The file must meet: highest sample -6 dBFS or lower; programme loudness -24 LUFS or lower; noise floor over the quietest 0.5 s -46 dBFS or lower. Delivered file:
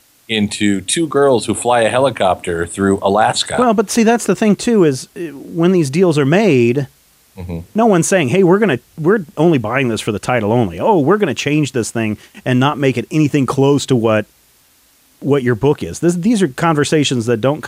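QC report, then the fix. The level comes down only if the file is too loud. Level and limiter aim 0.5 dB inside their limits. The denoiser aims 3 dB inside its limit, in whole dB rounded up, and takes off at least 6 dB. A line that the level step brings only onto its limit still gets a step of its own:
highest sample -2.0 dBFS: fail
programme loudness -14.5 LUFS: fail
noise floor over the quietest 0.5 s -52 dBFS: pass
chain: trim -10 dB

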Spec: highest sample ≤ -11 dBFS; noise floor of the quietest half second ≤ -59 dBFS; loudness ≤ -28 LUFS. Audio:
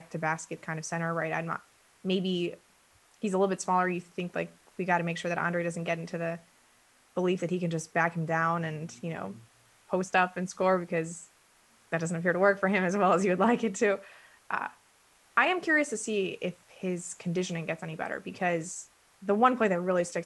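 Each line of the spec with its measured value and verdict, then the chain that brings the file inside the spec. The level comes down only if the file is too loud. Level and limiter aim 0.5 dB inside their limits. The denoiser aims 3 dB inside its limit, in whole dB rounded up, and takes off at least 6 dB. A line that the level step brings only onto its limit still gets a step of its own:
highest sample -9.5 dBFS: fail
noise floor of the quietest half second -63 dBFS: pass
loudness -30.0 LUFS: pass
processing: peak limiter -11.5 dBFS

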